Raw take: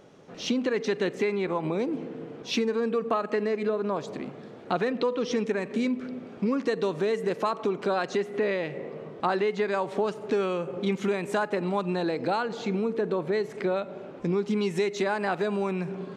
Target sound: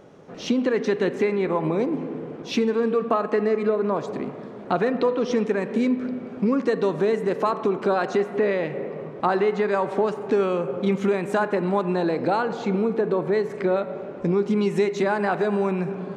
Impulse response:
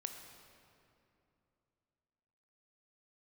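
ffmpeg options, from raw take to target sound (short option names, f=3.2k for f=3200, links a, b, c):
-filter_complex "[0:a]asplit=2[a][b];[1:a]atrim=start_sample=2205,lowpass=2.3k[c];[b][c]afir=irnorm=-1:irlink=0,volume=0.5dB[d];[a][d]amix=inputs=2:normalize=0"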